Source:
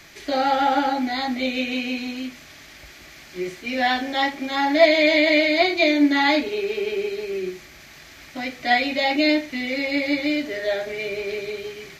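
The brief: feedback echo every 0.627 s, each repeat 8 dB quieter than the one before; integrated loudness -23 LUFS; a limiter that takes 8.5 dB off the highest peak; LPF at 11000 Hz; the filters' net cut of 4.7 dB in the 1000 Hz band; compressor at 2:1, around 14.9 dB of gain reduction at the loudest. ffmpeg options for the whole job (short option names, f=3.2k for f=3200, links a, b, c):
-af "lowpass=11k,equalizer=f=1k:t=o:g=-7,acompressor=threshold=-41dB:ratio=2,alimiter=level_in=5dB:limit=-24dB:level=0:latency=1,volume=-5dB,aecho=1:1:627|1254|1881|2508|3135:0.398|0.159|0.0637|0.0255|0.0102,volume=14dB"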